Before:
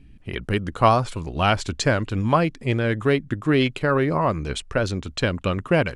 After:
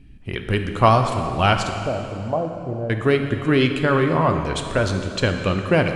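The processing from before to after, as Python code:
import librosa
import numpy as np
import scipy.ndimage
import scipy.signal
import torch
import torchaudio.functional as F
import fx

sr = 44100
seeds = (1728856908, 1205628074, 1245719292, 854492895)

y = fx.ladder_lowpass(x, sr, hz=800.0, resonance_pct=55, at=(1.69, 2.9))
y = fx.rev_plate(y, sr, seeds[0], rt60_s=2.6, hf_ratio=0.85, predelay_ms=0, drr_db=5.0)
y = F.gain(torch.from_numpy(y), 1.5).numpy()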